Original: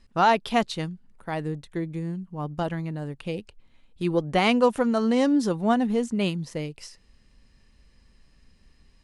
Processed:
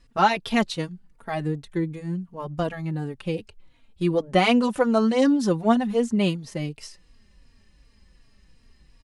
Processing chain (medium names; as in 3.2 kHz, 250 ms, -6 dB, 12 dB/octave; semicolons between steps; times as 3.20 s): endless flanger 3.6 ms -2.7 Hz; trim +4.5 dB